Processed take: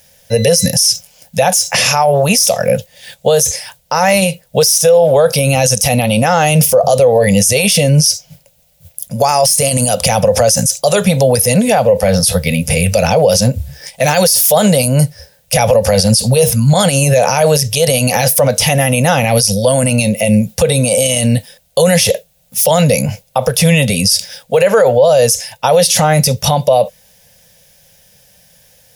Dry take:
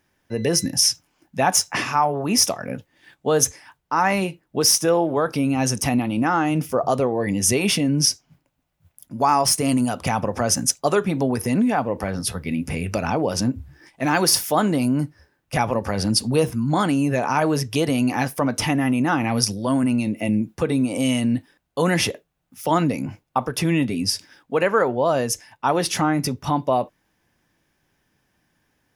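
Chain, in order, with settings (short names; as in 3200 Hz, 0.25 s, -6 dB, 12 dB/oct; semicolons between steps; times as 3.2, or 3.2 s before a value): EQ curve 190 Hz 0 dB, 330 Hz -25 dB, 510 Hz +9 dB, 1100 Hz -10 dB, 3800 Hz +8 dB, 12000 Hz +14 dB; maximiser +16.5 dB; gain -1 dB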